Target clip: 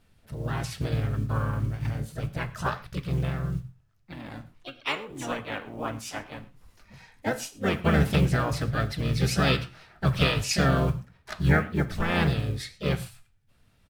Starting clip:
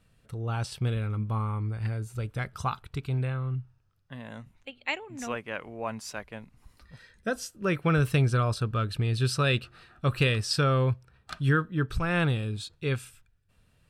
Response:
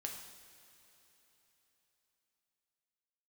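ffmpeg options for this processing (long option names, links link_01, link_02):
-filter_complex "[0:a]bandreject=frequency=60:width_type=h:width=6,bandreject=frequency=120:width_type=h:width=6,bandreject=frequency=180:width_type=h:width=6,acrusher=bits=8:mode=log:mix=0:aa=0.000001,asplit=4[link_01][link_02][link_03][link_04];[link_02]asetrate=22050,aresample=44100,atempo=2,volume=-4dB[link_05];[link_03]asetrate=52444,aresample=44100,atempo=0.840896,volume=-6dB[link_06];[link_04]asetrate=58866,aresample=44100,atempo=0.749154,volume=-5dB[link_07];[link_01][link_05][link_06][link_07]amix=inputs=4:normalize=0,flanger=delay=5.4:depth=8.6:regen=78:speed=1.7:shape=sinusoidal,asplit=2[link_08][link_09];[1:a]atrim=start_sample=2205,afade=type=out:start_time=0.18:duration=0.01,atrim=end_sample=8379[link_10];[link_09][link_10]afir=irnorm=-1:irlink=0,volume=-3dB[link_11];[link_08][link_11]amix=inputs=2:normalize=0"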